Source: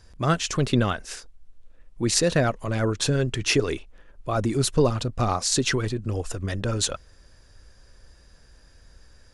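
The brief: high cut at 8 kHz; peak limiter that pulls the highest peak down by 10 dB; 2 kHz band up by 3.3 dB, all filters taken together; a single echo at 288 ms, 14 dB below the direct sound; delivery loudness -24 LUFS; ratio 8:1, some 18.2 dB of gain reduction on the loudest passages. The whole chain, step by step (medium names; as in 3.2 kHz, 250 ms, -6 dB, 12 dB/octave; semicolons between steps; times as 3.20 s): low-pass 8 kHz; peaking EQ 2 kHz +4.5 dB; compression 8:1, threshold -35 dBFS; peak limiter -30 dBFS; delay 288 ms -14 dB; trim +16.5 dB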